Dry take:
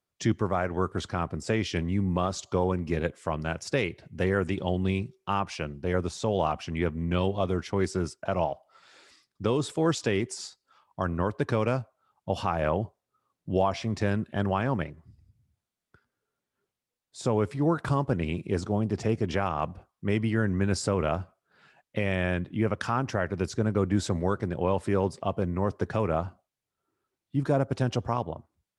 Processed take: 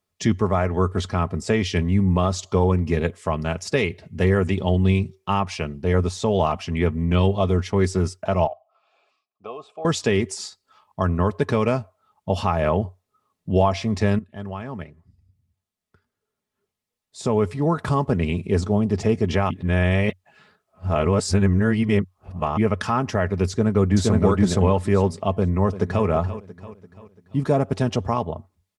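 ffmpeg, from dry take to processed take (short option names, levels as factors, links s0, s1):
-filter_complex "[0:a]asettb=1/sr,asplit=3[s0][s1][s2];[s0]atrim=end=8.474[s3];[s1]atrim=start=8.47:end=9.85,asetpts=PTS-STARTPTS,afade=t=in:d=0.004:c=qsin,afade=t=out:st=1.376:d=0.004:c=qsin,asplit=3[s4][s5][s6];[s4]bandpass=f=730:t=q:w=8,volume=1[s7];[s5]bandpass=f=1090:t=q:w=8,volume=0.501[s8];[s6]bandpass=f=2440:t=q:w=8,volume=0.355[s9];[s7][s8][s9]amix=inputs=3:normalize=0[s10];[s2]atrim=start=9.846[s11];[s3][s10]acrossfade=d=0.004:c1=hsin:c2=qsin[s12];[s12][s11]acrossfade=d=0.004:c1=qsin:c2=hsin,asplit=2[s13][s14];[s14]afade=t=in:st=23.49:d=0.01,afade=t=out:st=24.22:d=0.01,aecho=0:1:470|940|1410:0.944061|0.141609|0.0212414[s15];[s13][s15]amix=inputs=2:normalize=0,asplit=2[s16][s17];[s17]afade=t=in:st=25.38:d=0.01,afade=t=out:st=26.05:d=0.01,aecho=0:1:340|680|1020|1360|1700:0.223872|0.111936|0.055968|0.027984|0.013992[s18];[s16][s18]amix=inputs=2:normalize=0,asplit=4[s19][s20][s21][s22];[s19]atrim=end=14.19,asetpts=PTS-STARTPTS,afade=t=out:st=14.186:d=0.004:c=hsin:silence=0.177828[s23];[s20]atrim=start=14.19:end=19.502,asetpts=PTS-STARTPTS,afade=t=in:d=3.85:silence=0.177828[s24];[s21]atrim=start=19.498:end=22.572,asetpts=PTS-STARTPTS,areverse[s25];[s22]atrim=start=22.568[s26];[s23][s24]concat=n=2:v=0:a=1[s27];[s27][s25]acrossfade=d=0.004:c1=hsin:c2=hsin[s28];[s28][s26]acrossfade=d=0.004:c1=hsin:c2=hsin,equalizer=f=92:w=4.2:g=11.5,bandreject=f=1500:w=14,aecho=1:1:4.7:0.44,volume=1.78"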